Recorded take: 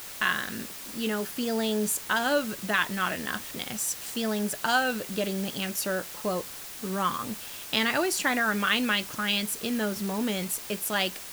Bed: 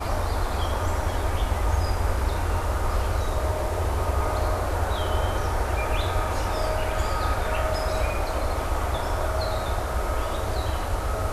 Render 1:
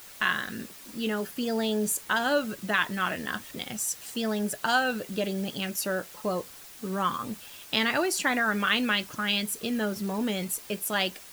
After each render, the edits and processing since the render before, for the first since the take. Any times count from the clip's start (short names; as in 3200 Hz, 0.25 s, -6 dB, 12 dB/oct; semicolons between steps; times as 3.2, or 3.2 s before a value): denoiser 7 dB, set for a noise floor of -41 dBFS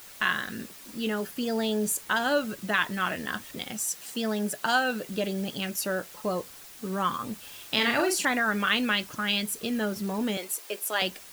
3.71–5.05 HPF 130 Hz 24 dB/oct; 7.39–8.25 doubler 43 ms -5 dB; 10.37–11.02 HPF 330 Hz 24 dB/oct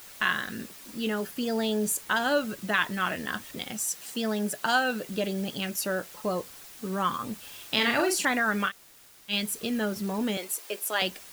8.69–9.31 room tone, crossfade 0.06 s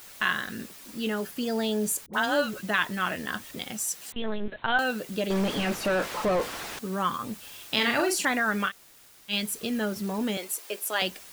2.06–2.63 dispersion highs, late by 74 ms, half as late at 700 Hz; 4.12–4.79 LPC vocoder at 8 kHz pitch kept; 5.3–6.79 overdrive pedal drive 36 dB, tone 1200 Hz, clips at -17 dBFS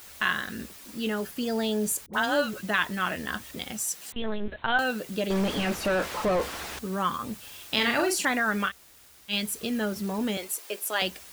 bell 68 Hz +13.5 dB 0.42 oct; notches 60/120 Hz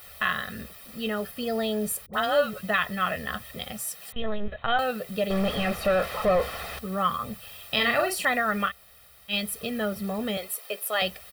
bell 6700 Hz -12.5 dB 0.63 oct; comb 1.6 ms, depth 73%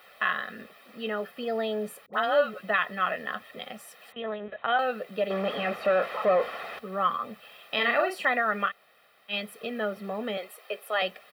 Bessel high-pass 160 Hz, order 2; three-band isolator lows -17 dB, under 210 Hz, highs -17 dB, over 3300 Hz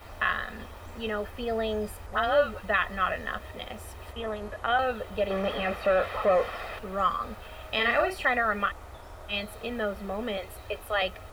add bed -19 dB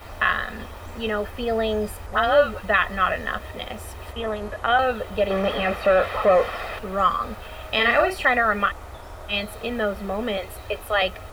gain +6 dB